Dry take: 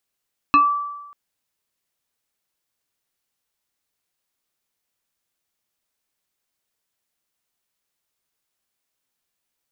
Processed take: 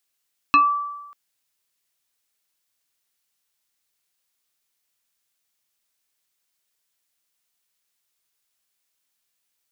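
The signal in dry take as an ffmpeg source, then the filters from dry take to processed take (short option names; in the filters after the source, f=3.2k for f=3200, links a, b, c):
-f lavfi -i "aevalsrc='0.376*pow(10,-3*t/1.05)*sin(2*PI*1160*t+0.84*pow(10,-3*t/0.24)*sin(2*PI*1.25*1160*t))':d=0.59:s=44100"
-af "tiltshelf=f=1.4k:g=-4.5"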